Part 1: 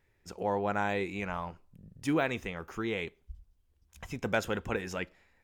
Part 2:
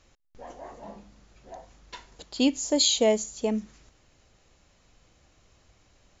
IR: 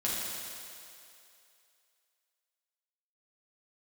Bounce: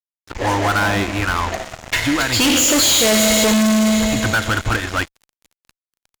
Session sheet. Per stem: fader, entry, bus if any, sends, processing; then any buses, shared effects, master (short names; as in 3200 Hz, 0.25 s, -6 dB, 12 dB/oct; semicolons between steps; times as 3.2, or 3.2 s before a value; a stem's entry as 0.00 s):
-0.5 dB, 0.00 s, send -23 dB, EQ curve 120 Hz 0 dB, 190 Hz -22 dB, 290 Hz +6 dB, 420 Hz -16 dB, 1500 Hz +1 dB, 2200 Hz -12 dB, 3300 Hz -1 dB, 7000 Hz -25 dB; compressor, threshold -33 dBFS, peak gain reduction 10.5 dB; bell 280 Hz -7 dB 1 oct
-2.5 dB, 0.00 s, send -4 dB, graphic EQ 125/250/500/1000/2000/4000 Hz -7/-6/-4/-11/+10/-5 dB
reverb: on, RT60 2.6 s, pre-delay 5 ms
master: fuzz box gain 40 dB, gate -49 dBFS